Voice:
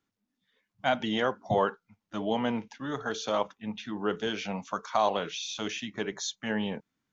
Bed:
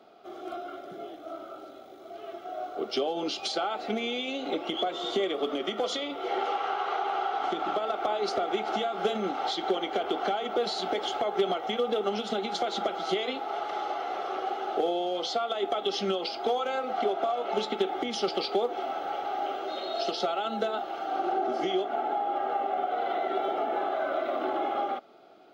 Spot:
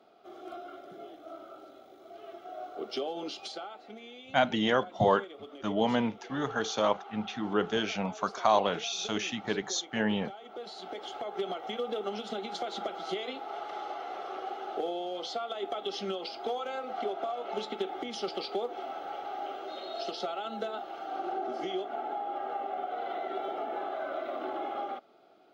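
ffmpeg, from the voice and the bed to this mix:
ffmpeg -i stem1.wav -i stem2.wav -filter_complex "[0:a]adelay=3500,volume=1.5dB[link_01];[1:a]volume=5dB,afade=type=out:start_time=3.15:duration=0.68:silence=0.281838,afade=type=in:start_time=10.43:duration=1.3:silence=0.298538[link_02];[link_01][link_02]amix=inputs=2:normalize=0" out.wav

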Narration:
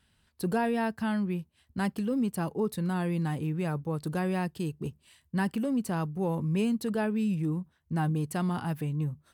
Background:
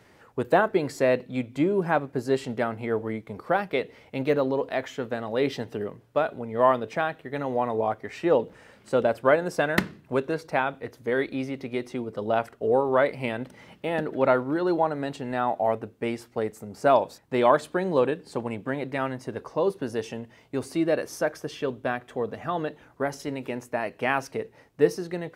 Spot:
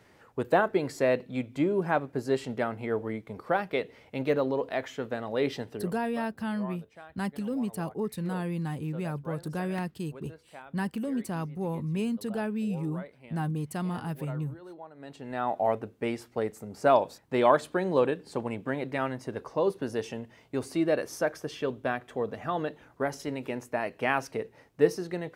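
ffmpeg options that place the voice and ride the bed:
ffmpeg -i stem1.wav -i stem2.wav -filter_complex "[0:a]adelay=5400,volume=-2.5dB[link_01];[1:a]volume=17dB,afade=type=out:start_time=5.55:duration=0.68:silence=0.112202,afade=type=in:start_time=14.94:duration=0.68:silence=0.1[link_02];[link_01][link_02]amix=inputs=2:normalize=0" out.wav

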